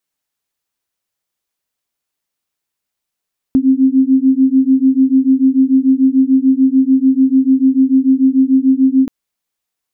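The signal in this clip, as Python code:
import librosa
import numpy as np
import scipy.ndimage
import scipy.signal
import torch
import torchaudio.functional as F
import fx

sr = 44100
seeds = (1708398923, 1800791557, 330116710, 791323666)

y = fx.two_tone_beats(sr, length_s=5.53, hz=261.0, beat_hz=6.8, level_db=-11.0)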